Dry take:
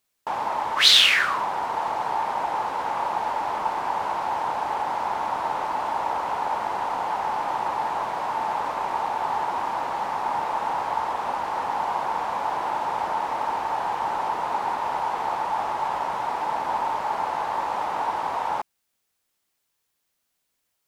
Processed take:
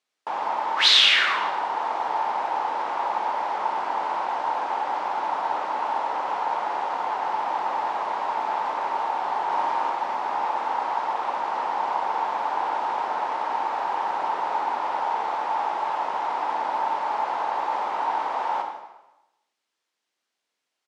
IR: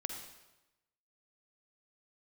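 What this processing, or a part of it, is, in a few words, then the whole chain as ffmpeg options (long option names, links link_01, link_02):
supermarket ceiling speaker: -filter_complex "[0:a]highpass=290,lowpass=5600[link_01];[1:a]atrim=start_sample=2205[link_02];[link_01][link_02]afir=irnorm=-1:irlink=0,asplit=3[link_03][link_04][link_05];[link_03]afade=type=out:start_time=9.49:duration=0.02[link_06];[link_04]asplit=2[link_07][link_08];[link_08]adelay=41,volume=-3dB[link_09];[link_07][link_09]amix=inputs=2:normalize=0,afade=type=in:start_time=9.49:duration=0.02,afade=type=out:start_time=9.89:duration=0.02[link_10];[link_05]afade=type=in:start_time=9.89:duration=0.02[link_11];[link_06][link_10][link_11]amix=inputs=3:normalize=0"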